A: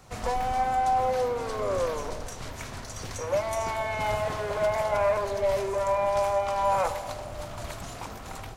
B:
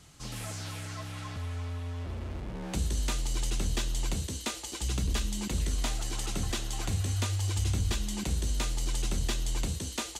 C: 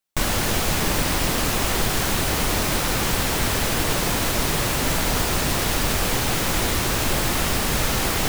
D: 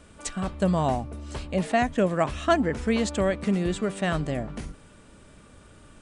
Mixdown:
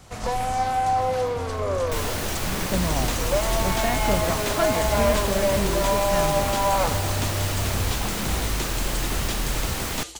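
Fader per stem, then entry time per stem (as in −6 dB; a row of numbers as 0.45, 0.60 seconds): +2.0, +2.0, −6.5, −4.5 decibels; 0.00, 0.00, 1.75, 2.10 seconds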